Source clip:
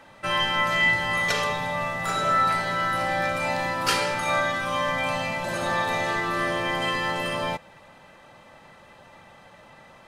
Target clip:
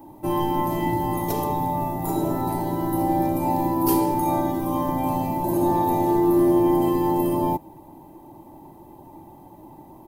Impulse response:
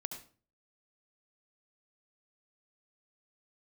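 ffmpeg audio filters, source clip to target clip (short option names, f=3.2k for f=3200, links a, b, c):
-af "firequalizer=gain_entry='entry(140,0);entry(210,-3);entry(320,14);entry(490,-12);entry(920,1);entry(1300,-28);entry(9000,-9);entry(13000,12)':delay=0.05:min_phase=1,volume=7.5dB"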